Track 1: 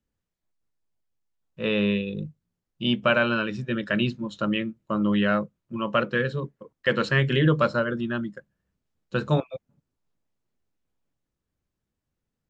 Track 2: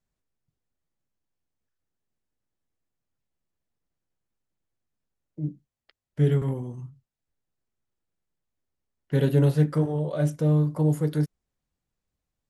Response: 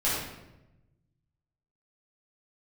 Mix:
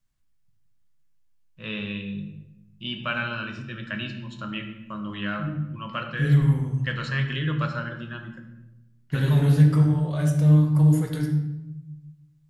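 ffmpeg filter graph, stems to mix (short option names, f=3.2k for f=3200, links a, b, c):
-filter_complex "[0:a]volume=-6dB,asplit=3[a][b][c];[b]volume=-13dB[d];[1:a]volume=1.5dB,asplit=2[e][f];[f]volume=-11dB[g];[c]apad=whole_len=551105[h];[e][h]sidechaincompress=threshold=-35dB:ratio=8:attack=16:release=206[i];[2:a]atrim=start_sample=2205[j];[d][g]amix=inputs=2:normalize=0[k];[k][j]afir=irnorm=-1:irlink=0[l];[a][i][l]amix=inputs=3:normalize=0,equalizer=f=470:w=1.1:g=-13.5"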